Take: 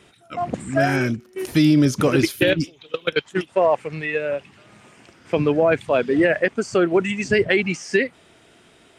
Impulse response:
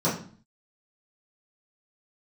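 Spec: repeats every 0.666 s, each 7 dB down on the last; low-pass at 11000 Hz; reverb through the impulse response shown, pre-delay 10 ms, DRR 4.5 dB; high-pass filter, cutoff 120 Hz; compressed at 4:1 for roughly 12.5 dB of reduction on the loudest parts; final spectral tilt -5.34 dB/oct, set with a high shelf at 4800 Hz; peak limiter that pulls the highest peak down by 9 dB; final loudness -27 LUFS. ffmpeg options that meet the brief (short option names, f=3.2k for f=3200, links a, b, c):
-filter_complex "[0:a]highpass=120,lowpass=11k,highshelf=f=4.8k:g=8,acompressor=threshold=-28dB:ratio=4,alimiter=limit=-22.5dB:level=0:latency=1,aecho=1:1:666|1332|1998|2664|3330:0.447|0.201|0.0905|0.0407|0.0183,asplit=2[a][b];[1:a]atrim=start_sample=2205,adelay=10[c];[b][c]afir=irnorm=-1:irlink=0,volume=-17.5dB[d];[a][d]amix=inputs=2:normalize=0,volume=2.5dB"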